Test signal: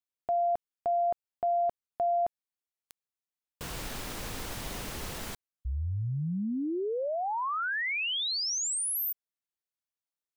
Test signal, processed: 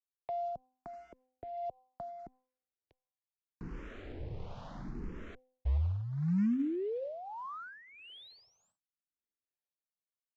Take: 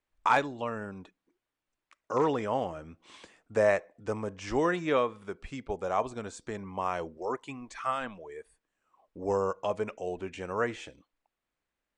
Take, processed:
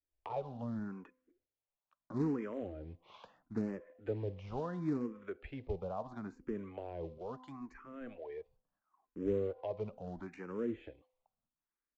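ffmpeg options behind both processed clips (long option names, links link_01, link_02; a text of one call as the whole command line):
ffmpeg -i in.wav -filter_complex "[0:a]agate=range=-9dB:threshold=-51dB:ratio=16:release=495:detection=rms,bandreject=frequency=255.5:width_type=h:width=4,bandreject=frequency=511:width_type=h:width=4,bandreject=frequency=766.5:width_type=h:width=4,bandreject=frequency=1022:width_type=h:width=4,adynamicequalizer=threshold=0.00631:dfrequency=450:dqfactor=4.1:tfrequency=450:tqfactor=4.1:attack=5:release=100:ratio=0.375:range=2:mode=cutabove:tftype=bell,acrossover=split=460[link_01][link_02];[link_02]acompressor=threshold=-44dB:ratio=16:attack=4.2:release=155:knee=1:detection=peak[link_03];[link_01][link_03]amix=inputs=2:normalize=0,acrossover=split=470[link_04][link_05];[link_04]aeval=exprs='val(0)*(1-0.7/2+0.7/2*cos(2*PI*1.4*n/s))':channel_layout=same[link_06];[link_05]aeval=exprs='val(0)*(1-0.7/2-0.7/2*cos(2*PI*1.4*n/s))':channel_layout=same[link_07];[link_06][link_07]amix=inputs=2:normalize=0,aresample=16000,acrusher=bits=5:mode=log:mix=0:aa=0.000001,aresample=44100,adynamicsmooth=sensitivity=3:basefreq=2000,asplit=2[link_08][link_09];[link_09]afreqshift=0.74[link_10];[link_08][link_10]amix=inputs=2:normalize=1,volume=4.5dB" out.wav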